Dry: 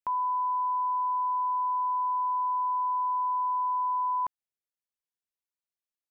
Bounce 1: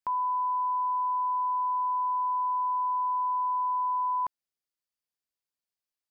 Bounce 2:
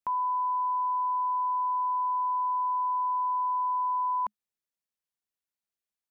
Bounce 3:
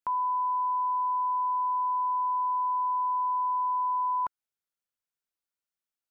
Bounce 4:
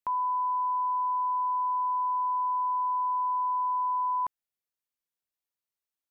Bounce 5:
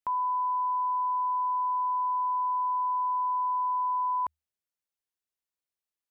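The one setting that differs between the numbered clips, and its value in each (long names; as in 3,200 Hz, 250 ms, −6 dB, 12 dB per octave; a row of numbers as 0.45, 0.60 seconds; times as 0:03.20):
parametric band, centre frequency: 4,800, 210, 1,400, 14,000, 77 Hertz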